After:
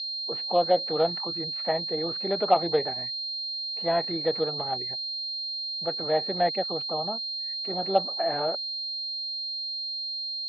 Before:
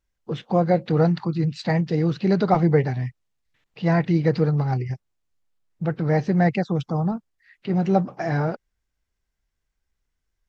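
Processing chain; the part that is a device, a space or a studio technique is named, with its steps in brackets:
toy sound module (linearly interpolated sample-rate reduction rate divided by 4×; switching amplifier with a slow clock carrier 4,200 Hz; loudspeaker in its box 630–4,000 Hz, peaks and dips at 630 Hz +3 dB, 1,000 Hz −6 dB, 1,500 Hz −8 dB, 2,200 Hz −5 dB, 3,100 Hz −6 dB)
level +2.5 dB

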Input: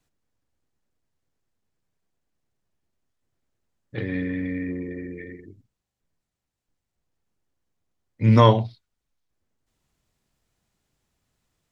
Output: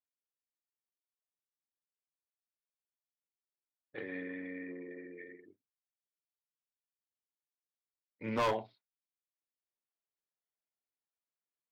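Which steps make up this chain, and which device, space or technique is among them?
walkie-talkie (band-pass filter 410–2,600 Hz; hard clipping −19.5 dBFS, distortion −6 dB; noise gate −55 dBFS, range −16 dB)
level −7.5 dB

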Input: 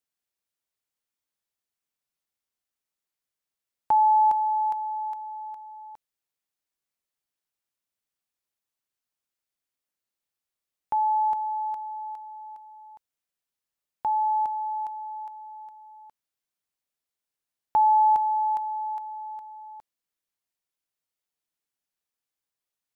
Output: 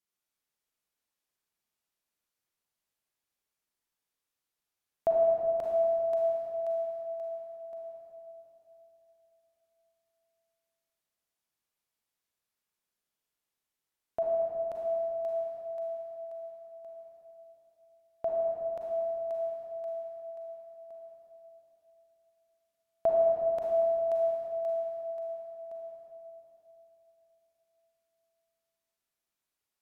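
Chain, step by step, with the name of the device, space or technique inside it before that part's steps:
slowed and reverbed (speed change −23%; convolution reverb RT60 3.3 s, pre-delay 33 ms, DRR −3.5 dB)
level −4 dB

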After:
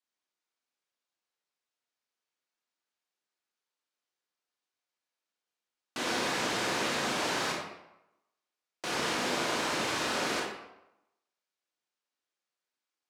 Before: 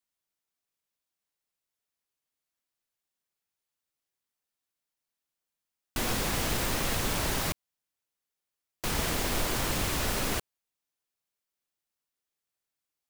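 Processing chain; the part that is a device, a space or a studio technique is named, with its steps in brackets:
supermarket ceiling speaker (band-pass filter 260–6,500 Hz; convolution reverb RT60 0.90 s, pre-delay 23 ms, DRR −1.5 dB)
level −2 dB

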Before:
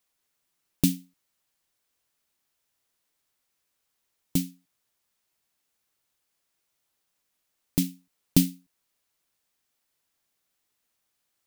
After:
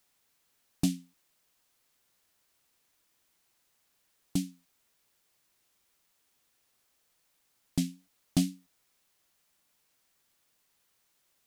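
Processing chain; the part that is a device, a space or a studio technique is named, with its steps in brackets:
compact cassette (soft clipping −14 dBFS, distortion −13 dB; low-pass filter 9,200 Hz 12 dB per octave; tape wow and flutter; white noise bed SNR 33 dB)
level −2.5 dB

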